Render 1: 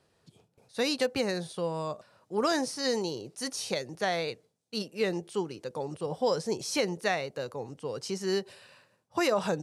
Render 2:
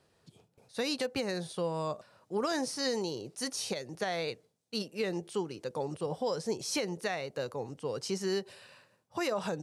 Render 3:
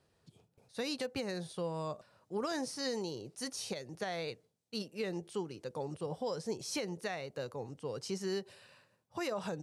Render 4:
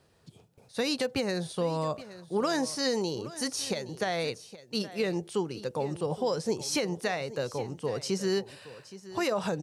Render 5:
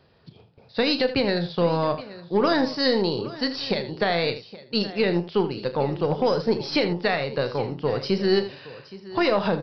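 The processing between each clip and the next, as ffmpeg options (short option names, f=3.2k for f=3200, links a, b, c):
-af "alimiter=limit=-22.5dB:level=0:latency=1:release=231"
-af "lowshelf=f=130:g=6,volume=-5dB"
-af "aecho=1:1:820:0.158,volume=8dB"
-af "aeval=exprs='0.126*(cos(1*acos(clip(val(0)/0.126,-1,1)))-cos(1*PI/2))+0.00794*(cos(4*acos(clip(val(0)/0.126,-1,1)))-cos(4*PI/2))+0.00224*(cos(6*acos(clip(val(0)/0.126,-1,1)))-cos(6*PI/2))+0.00282*(cos(7*acos(clip(val(0)/0.126,-1,1)))-cos(7*PI/2))':c=same,aecho=1:1:35|80:0.251|0.237,aresample=11025,aresample=44100,volume=7dB"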